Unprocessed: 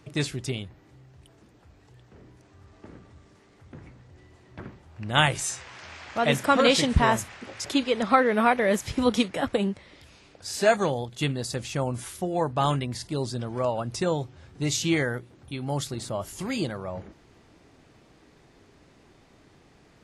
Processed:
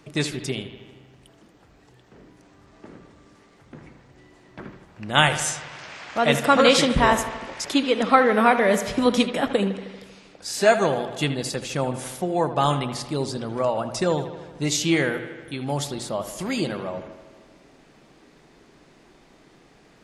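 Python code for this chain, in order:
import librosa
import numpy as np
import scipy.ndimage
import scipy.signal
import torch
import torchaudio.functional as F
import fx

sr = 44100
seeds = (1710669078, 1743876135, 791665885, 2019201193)

p1 = fx.peak_eq(x, sr, hz=84.0, db=-14.5, octaves=0.64)
p2 = fx.hum_notches(p1, sr, base_hz=60, count=2)
p3 = p2 + fx.echo_bbd(p2, sr, ms=78, stages=2048, feedback_pct=68, wet_db=-12.0, dry=0)
y = p3 * 10.0 ** (3.5 / 20.0)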